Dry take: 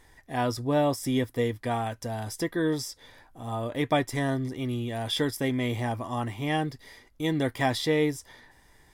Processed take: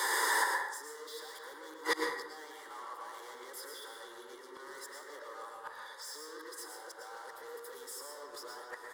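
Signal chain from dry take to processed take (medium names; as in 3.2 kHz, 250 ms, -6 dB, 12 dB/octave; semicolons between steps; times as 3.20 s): reverse the whole clip; band-stop 5.8 kHz, Q 7.1; overdrive pedal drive 33 dB, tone 3.5 kHz, clips at -12.5 dBFS; peak limiter -23 dBFS, peak gain reduction 10 dB; high-pass 460 Hz 24 dB/octave; treble shelf 5.7 kHz +4.5 dB; static phaser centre 680 Hz, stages 6; speakerphone echo 270 ms, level -7 dB; inverted gate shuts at -28 dBFS, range -26 dB; reverberation RT60 0.95 s, pre-delay 97 ms, DRR 1.5 dB; trim +9 dB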